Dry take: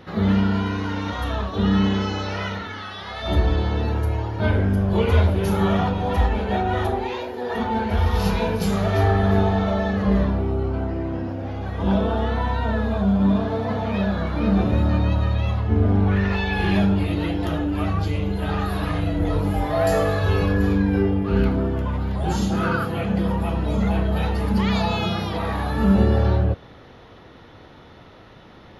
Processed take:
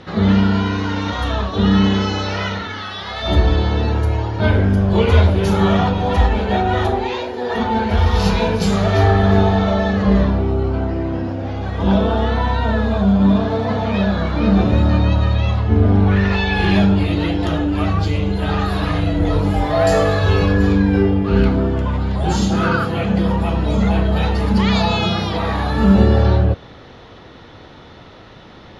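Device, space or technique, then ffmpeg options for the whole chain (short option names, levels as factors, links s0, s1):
presence and air boost: -af "lowpass=f=8700:w=0.5412,lowpass=f=8700:w=1.3066,equalizer=f=4000:t=o:w=0.77:g=2.5,highshelf=f=9500:g=6,volume=1.78"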